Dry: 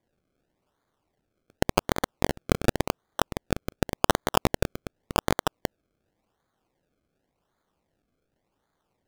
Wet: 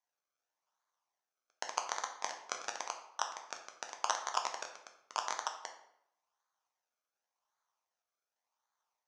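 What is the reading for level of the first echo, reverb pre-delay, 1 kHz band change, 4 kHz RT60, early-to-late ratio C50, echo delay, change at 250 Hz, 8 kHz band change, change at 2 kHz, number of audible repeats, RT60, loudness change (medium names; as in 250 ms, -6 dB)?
no echo, 6 ms, -7.5 dB, 0.55 s, 8.0 dB, no echo, -34.5 dB, -3.5 dB, -10.0 dB, no echo, 0.75 s, -11.0 dB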